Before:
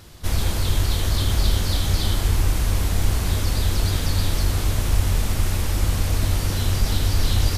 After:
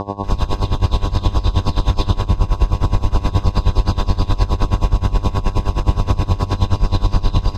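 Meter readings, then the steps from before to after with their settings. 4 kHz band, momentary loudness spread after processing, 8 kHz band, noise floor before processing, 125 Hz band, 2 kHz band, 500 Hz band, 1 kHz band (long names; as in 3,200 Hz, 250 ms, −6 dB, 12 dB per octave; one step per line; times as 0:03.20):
−3.0 dB, 2 LU, −11.0 dB, −25 dBFS, +4.0 dB, −3.0 dB, +6.5 dB, +9.5 dB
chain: lower of the sound and its delayed copy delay 2.5 ms
high-shelf EQ 8,800 Hz +5 dB
notch filter 2,300 Hz, Q 7.7
comb filter 0.8 ms, depth 46%
auto-filter notch saw down 6.7 Hz 670–2,400 Hz
hum with harmonics 100 Hz, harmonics 11, −30 dBFS −1 dB per octave
high-frequency loss of the air 180 metres
delay with a low-pass on its return 129 ms, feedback 68%, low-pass 2,900 Hz, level −12.5 dB
boost into a limiter +13.5 dB
tremolo with a sine in dB 9.5 Hz, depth 19 dB
level −2.5 dB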